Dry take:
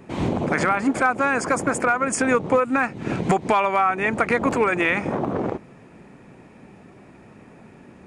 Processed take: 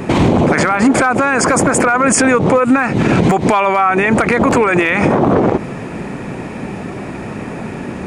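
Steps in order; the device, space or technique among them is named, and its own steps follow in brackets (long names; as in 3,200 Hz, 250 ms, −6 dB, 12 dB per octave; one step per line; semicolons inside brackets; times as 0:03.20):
loud club master (downward compressor 3 to 1, threshold −21 dBFS, peak gain reduction 6 dB; hard clipping −13.5 dBFS, distortion −31 dB; boost into a limiter +24.5 dB)
level −3 dB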